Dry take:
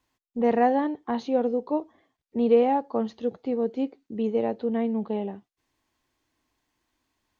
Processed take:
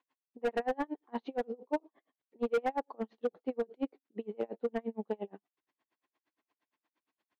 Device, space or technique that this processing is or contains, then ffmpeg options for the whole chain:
helicopter radio: -af "highpass=300,lowpass=3000,aeval=exprs='val(0)*pow(10,-37*(0.5-0.5*cos(2*PI*8.6*n/s))/20)':c=same,asoftclip=type=hard:threshold=0.0596"

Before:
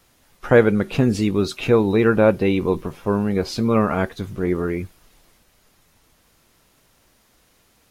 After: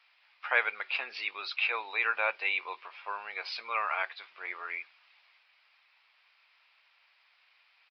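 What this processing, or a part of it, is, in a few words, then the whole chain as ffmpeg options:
musical greeting card: -af "aresample=11025,aresample=44100,highpass=f=840:w=0.5412,highpass=f=840:w=1.3066,equalizer=f=2400:t=o:w=0.56:g=11,volume=0.473"

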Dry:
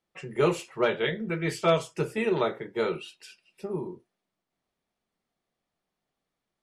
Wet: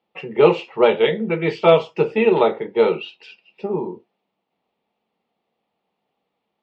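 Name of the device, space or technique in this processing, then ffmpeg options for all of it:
guitar cabinet: -af "highpass=110,equalizer=f=130:t=q:w=4:g=-6,equalizer=f=210:t=q:w=4:g=4,equalizer=f=470:t=q:w=4:g=7,equalizer=f=840:t=q:w=4:g=9,equalizer=f=1600:t=q:w=4:g=-7,equalizer=f=2700:t=q:w=4:g=5,lowpass=f=4000:w=0.5412,lowpass=f=4000:w=1.3066,volume=2.11"

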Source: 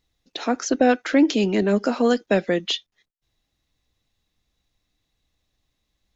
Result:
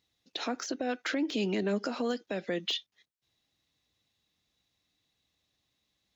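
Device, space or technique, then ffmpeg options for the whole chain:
broadcast voice chain: -af "highpass=100,deesser=0.7,acompressor=threshold=0.0794:ratio=4,equalizer=f=3700:t=o:w=1.5:g=4.5,alimiter=limit=0.133:level=0:latency=1:release=144,volume=0.631"

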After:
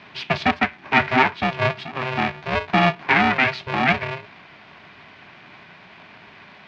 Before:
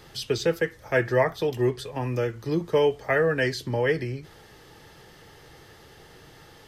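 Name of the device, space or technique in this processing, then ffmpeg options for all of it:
ring modulator pedal into a guitar cabinet: -af "aeval=exprs='val(0)*sgn(sin(2*PI*260*n/s))':c=same,highpass=98,equalizer=f=120:t=q:w=4:g=-4,equalizer=f=360:t=q:w=4:g=-5,equalizer=f=510:t=q:w=4:g=-6,equalizer=f=970:t=q:w=4:g=4,equalizer=f=1700:t=q:w=4:g=4,equalizer=f=2400:t=q:w=4:g=9,lowpass=f=4000:w=0.5412,lowpass=f=4000:w=1.3066,volume=1.5"

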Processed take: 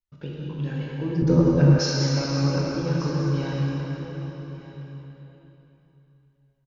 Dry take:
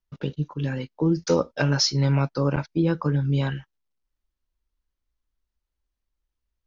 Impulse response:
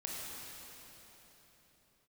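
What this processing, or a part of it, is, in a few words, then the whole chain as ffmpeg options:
cave: -filter_complex "[0:a]aecho=1:1:193:0.355[s0];[1:a]atrim=start_sample=2205[s1];[s0][s1]afir=irnorm=-1:irlink=0,asettb=1/sr,asplit=3[s2][s3][s4];[s2]atrim=end=1.224[s5];[s3]atrim=start=1.22:end=1.79,asetpts=PTS-STARTPTS,afade=t=in:d=0.004:c=qsin,afade=t=out:st=0.566:d=0.004:c=qsin,aemphasis=mode=reproduction:type=riaa[s6];[s4]atrim=start=1.786[s7];[s5][s6]acrossfade=d=0.004:c1=hsin:c2=qsin[s8];[s8][s7]acrossfade=d=0.004:c1=qsin:c2=hsin,aecho=1:1:1196:0.15,volume=0.668"

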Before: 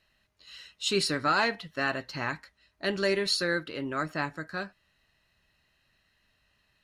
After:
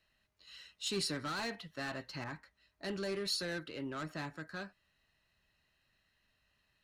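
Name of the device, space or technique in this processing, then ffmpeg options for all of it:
one-band saturation: -filter_complex "[0:a]acrossover=split=280|4500[s0][s1][s2];[s1]asoftclip=type=tanh:threshold=0.0266[s3];[s0][s3][s2]amix=inputs=3:normalize=0,asettb=1/sr,asplit=3[s4][s5][s6];[s4]atrim=end=2.244[s7];[s5]atrim=start=2.24:end=3.25,asetpts=PTS-STARTPTS,afade=t=in:d=0.004:c=qsin,afade=t=out:st=1.006:d=0.004:c=qsin,adynamicequalizer=threshold=0.00316:dfrequency=2000:dqfactor=0.7:tfrequency=2000:tqfactor=0.7:attack=5:release=100:ratio=0.375:range=3:mode=cutabove:tftype=highshelf[s8];[s6]atrim=start=3.246[s9];[s7][s8]acrossfade=d=0.004:c1=hsin:c2=qsin[s10];[s10][s9]acrossfade=d=0.004:c1=qsin:c2=hsin,volume=0.501"

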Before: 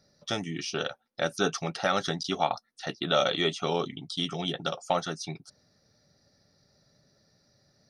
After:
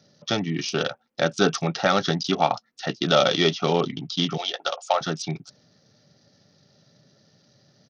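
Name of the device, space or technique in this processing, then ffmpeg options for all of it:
Bluetooth headset: -filter_complex "[0:a]asettb=1/sr,asplit=3[s0][s1][s2];[s0]atrim=end=4.374[s3];[s1]atrim=start=4.37:end=5.01,asetpts=PTS-STARTPTS,afade=t=in:d=0.004:c=qsin,afade=t=out:st=0.636:d=0.004:c=qsin,highpass=f=540:w=0.5412,highpass=f=540:w=1.3066[s4];[s2]atrim=start=5.006[s5];[s3][s4]acrossfade=d=0.004:c1=hsin:c2=qsin[s6];[s6][s5]acrossfade=d=0.004:c1=qsin:c2=hsin,highpass=f=110:w=0.5412,highpass=f=110:w=1.3066,lowshelf=f=320:g=5,aresample=16000,aresample=44100,volume=1.78" -ar 48000 -c:a sbc -b:a 64k

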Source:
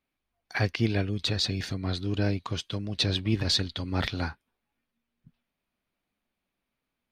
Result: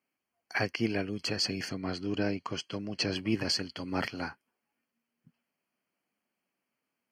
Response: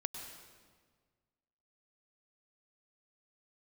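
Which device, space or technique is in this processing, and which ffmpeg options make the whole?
PA system with an anti-feedback notch: -filter_complex "[0:a]highpass=190,asuperstop=centerf=3700:order=8:qfactor=4,alimiter=limit=0.141:level=0:latency=1:release=449,asettb=1/sr,asplit=3[s0][s1][s2];[s0]atrim=end=1.694[s3];[s1]atrim=start=1.69:end=3.16,asetpts=PTS-STARTPTS,afade=t=in:d=0.004:c=qsin,afade=t=out:st=1.466:d=0.004:c=qsin,lowpass=7300[s4];[s2]atrim=start=3.156[s5];[s3][s4]acrossfade=d=0.004:c1=hsin:c2=qsin[s6];[s6][s5]acrossfade=d=0.004:c1=qsin:c2=hsin"

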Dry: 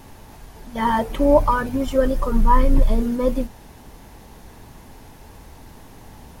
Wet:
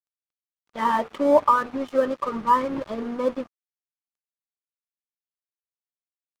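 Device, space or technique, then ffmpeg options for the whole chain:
pocket radio on a weak battery: -af "highpass=270,lowpass=3300,aeval=exprs='sgn(val(0))*max(abs(val(0))-0.0141,0)':c=same,equalizer=f=1200:t=o:w=0.2:g=8,volume=0.841"

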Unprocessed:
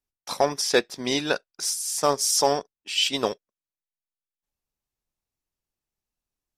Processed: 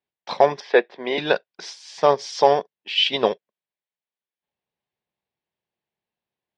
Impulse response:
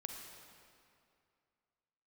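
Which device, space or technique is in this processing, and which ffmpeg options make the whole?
kitchen radio: -filter_complex "[0:a]asettb=1/sr,asplit=3[s0][s1][s2];[s0]atrim=end=0.604[s3];[s1]atrim=start=0.6:end=1.18,asetpts=PTS-STARTPTS,afade=t=in:d=0.004:c=qsin,afade=t=out:st=0.576:d=0.004:c=qsin,acrossover=split=270 2800:gain=0.141 1 0.158[s4][s5][s6];[s4][s5][s6]amix=inputs=3:normalize=0[s7];[s2]atrim=start=1.176[s8];[s3][s7]acrossfade=d=0.004:c1=hsin:c2=qsin[s9];[s9][s8]acrossfade=d=0.004:c1=qsin:c2=hsin,highpass=170,equalizer=f=280:t=q:w=4:g=-9,equalizer=f=1300:t=q:w=4:g=-9,equalizer=f=2600:t=q:w=4:g=-3,lowpass=f=3500:w=0.5412,lowpass=f=3500:w=1.3066,volume=2.24"

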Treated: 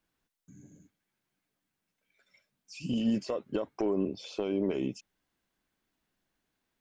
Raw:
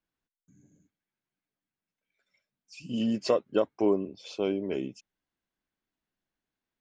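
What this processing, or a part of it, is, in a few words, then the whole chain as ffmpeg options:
de-esser from a sidechain: -filter_complex "[0:a]asplit=2[s0][s1];[s1]highpass=f=5100:p=1,apad=whole_len=299951[s2];[s0][s2]sidechaincompress=threshold=0.002:ratio=8:attack=2.9:release=50,volume=2.37"

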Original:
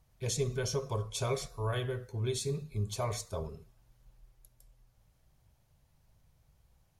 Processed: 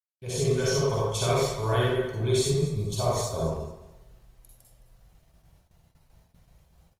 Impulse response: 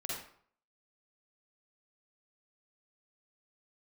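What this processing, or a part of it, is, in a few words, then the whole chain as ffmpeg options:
speakerphone in a meeting room: -filter_complex "[0:a]asettb=1/sr,asplit=3[s0][s1][s2];[s0]atrim=end=2.664[s3];[s1]atrim=start=2.66:end=3.36,asetpts=PTS-STARTPTS,afade=t=in:d=0.004:c=qsin,afade=t=out:st=0.696:d=0.004:c=qsin,equalizer=f=2000:t=o:w=0.83:g=-11.5[s4];[s2]atrim=start=3.356[s5];[s3][s4]acrossfade=d=0.004:c1=hsin:c2=qsin[s6];[s6][s5]acrossfade=d=0.004:c1=qsin:c2=hsin,aecho=1:1:215|430|645:0.168|0.042|0.0105[s7];[1:a]atrim=start_sample=2205[s8];[s7][s8]afir=irnorm=-1:irlink=0,asplit=2[s9][s10];[s10]adelay=100,highpass=300,lowpass=3400,asoftclip=type=hard:threshold=0.0316,volume=0.355[s11];[s9][s11]amix=inputs=2:normalize=0,dynaudnorm=f=130:g=5:m=5.01,agate=range=0.01:threshold=0.00251:ratio=16:detection=peak,volume=0.501" -ar 48000 -c:a libopus -b:a 32k

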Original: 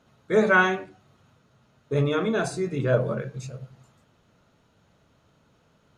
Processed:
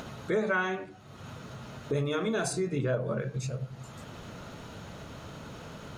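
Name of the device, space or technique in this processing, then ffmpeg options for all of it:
upward and downward compression: -filter_complex "[0:a]asettb=1/sr,asplit=3[s0][s1][s2];[s0]atrim=end=1.944[s3];[s1]atrim=start=1.94:end=2.53,asetpts=PTS-STARTPTS,afade=t=in:d=0.004:c=qsin,afade=t=out:st=0.586:d=0.004:c=qsin,aemphasis=mode=production:type=cd[s4];[s2]atrim=start=2.526[s5];[s3][s4]acrossfade=d=0.004:c1=hsin:c2=qsin[s6];[s6][s5]acrossfade=d=0.004:c1=qsin:c2=hsin,acompressor=mode=upward:threshold=0.0447:ratio=2.5,acompressor=threshold=0.0501:ratio=5"

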